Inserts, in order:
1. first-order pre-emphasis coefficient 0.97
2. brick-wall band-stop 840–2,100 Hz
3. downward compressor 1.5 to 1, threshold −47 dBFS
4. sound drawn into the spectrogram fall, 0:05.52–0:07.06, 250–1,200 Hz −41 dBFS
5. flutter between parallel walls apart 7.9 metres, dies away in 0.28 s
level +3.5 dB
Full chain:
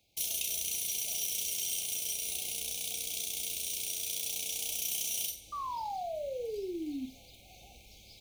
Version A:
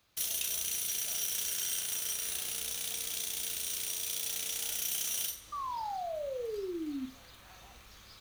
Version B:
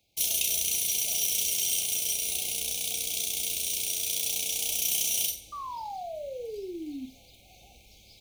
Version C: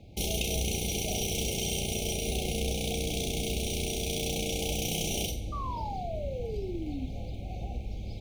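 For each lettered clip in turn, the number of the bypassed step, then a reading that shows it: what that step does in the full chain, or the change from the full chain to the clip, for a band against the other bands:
2, 2 kHz band +1.5 dB
3, average gain reduction 4.0 dB
1, 125 Hz band +20.5 dB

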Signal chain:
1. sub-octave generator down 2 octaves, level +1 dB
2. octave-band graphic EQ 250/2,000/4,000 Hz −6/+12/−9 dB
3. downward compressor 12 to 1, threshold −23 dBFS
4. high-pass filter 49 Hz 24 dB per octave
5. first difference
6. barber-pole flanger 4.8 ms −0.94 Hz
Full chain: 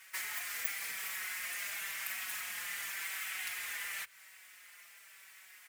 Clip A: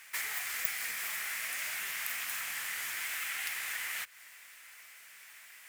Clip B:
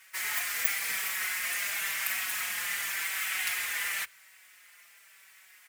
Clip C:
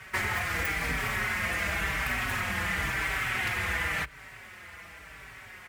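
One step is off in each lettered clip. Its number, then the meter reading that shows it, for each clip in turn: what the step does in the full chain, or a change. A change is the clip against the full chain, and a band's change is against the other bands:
6, change in crest factor +2.5 dB
3, average gain reduction 5.5 dB
5, 8 kHz band −14.0 dB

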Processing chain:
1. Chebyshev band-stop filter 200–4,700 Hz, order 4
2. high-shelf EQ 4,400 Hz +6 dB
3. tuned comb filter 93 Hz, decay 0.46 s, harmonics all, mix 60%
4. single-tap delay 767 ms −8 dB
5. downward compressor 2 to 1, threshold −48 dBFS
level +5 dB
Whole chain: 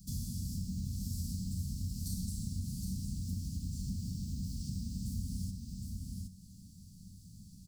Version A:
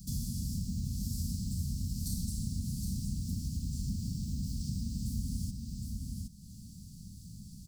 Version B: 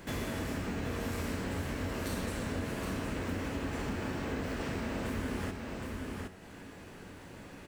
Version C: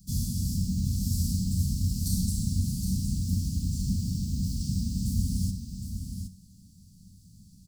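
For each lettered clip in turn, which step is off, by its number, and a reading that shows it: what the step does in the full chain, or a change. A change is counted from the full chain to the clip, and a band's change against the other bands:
3, change in momentary loudness spread −3 LU
1, 4 kHz band +7.0 dB
5, average gain reduction 7.5 dB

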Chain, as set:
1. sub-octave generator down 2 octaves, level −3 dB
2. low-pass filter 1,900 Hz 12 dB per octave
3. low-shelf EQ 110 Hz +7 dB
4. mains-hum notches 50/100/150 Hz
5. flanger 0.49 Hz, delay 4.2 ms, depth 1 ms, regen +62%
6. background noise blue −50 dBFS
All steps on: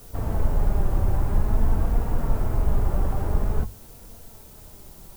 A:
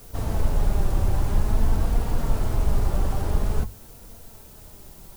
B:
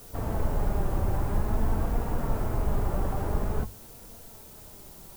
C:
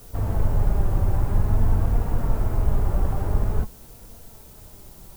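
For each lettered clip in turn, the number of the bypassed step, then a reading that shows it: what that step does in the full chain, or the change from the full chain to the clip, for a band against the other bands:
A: 2, 2 kHz band +2.5 dB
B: 3, 125 Hz band −4.0 dB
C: 4, change in momentary loudness spread +2 LU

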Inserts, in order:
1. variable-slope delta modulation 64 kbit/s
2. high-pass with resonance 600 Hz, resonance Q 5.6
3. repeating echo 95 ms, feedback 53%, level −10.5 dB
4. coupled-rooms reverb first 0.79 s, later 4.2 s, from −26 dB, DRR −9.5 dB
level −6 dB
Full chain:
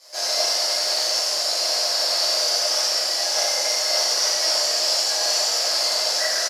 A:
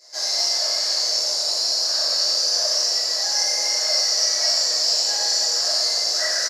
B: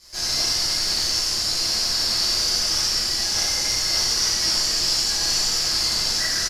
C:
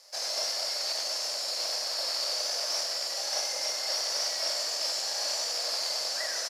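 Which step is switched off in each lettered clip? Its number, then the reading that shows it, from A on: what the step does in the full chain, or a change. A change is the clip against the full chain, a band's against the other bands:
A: 1, 4 kHz band +5.0 dB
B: 2, 500 Hz band −10.5 dB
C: 4, change in crest factor −2.0 dB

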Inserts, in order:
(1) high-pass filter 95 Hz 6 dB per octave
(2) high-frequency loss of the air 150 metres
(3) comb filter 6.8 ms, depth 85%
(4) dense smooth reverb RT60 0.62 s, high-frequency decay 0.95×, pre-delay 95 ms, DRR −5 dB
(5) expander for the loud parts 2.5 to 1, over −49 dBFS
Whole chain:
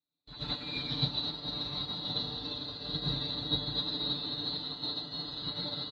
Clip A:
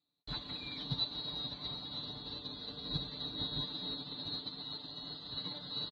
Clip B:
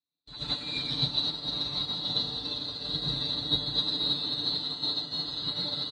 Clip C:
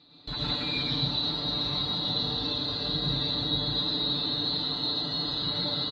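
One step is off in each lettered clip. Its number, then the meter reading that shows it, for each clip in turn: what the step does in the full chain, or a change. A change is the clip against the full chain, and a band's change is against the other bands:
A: 4, change in integrated loudness −6.0 LU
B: 2, 4 kHz band +4.0 dB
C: 5, 125 Hz band −1.5 dB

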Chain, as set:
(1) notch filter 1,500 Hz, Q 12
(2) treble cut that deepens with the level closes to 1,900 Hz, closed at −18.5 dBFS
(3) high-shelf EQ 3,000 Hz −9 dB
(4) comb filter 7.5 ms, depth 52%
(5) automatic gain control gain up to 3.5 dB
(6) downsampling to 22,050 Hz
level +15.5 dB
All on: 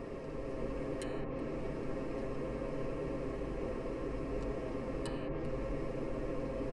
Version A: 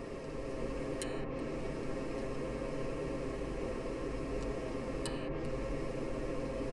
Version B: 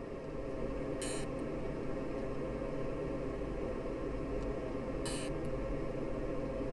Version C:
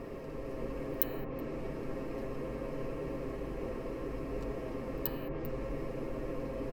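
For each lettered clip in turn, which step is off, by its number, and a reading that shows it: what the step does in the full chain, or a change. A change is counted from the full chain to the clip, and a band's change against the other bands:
3, 4 kHz band +5.0 dB
2, 4 kHz band +4.5 dB
6, change in crest factor +16.5 dB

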